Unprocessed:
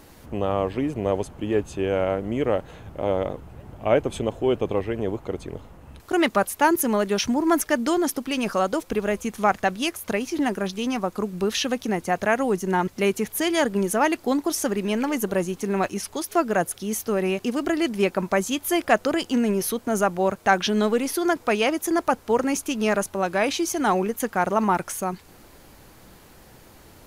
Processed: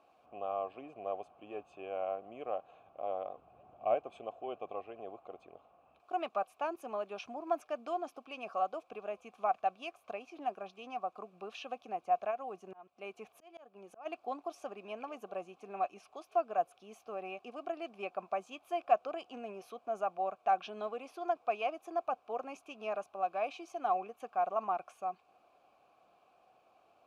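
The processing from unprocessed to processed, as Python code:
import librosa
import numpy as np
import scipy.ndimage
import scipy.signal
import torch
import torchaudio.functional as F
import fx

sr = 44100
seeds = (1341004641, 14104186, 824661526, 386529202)

y = fx.vowel_filter(x, sr, vowel='a')
y = fx.low_shelf(y, sr, hz=360.0, db=7.0, at=(3.36, 3.95))
y = fx.auto_swell(y, sr, attack_ms=514.0, at=(12.3, 14.05), fade=0.02)
y = F.gain(torch.from_numpy(y), -4.0).numpy()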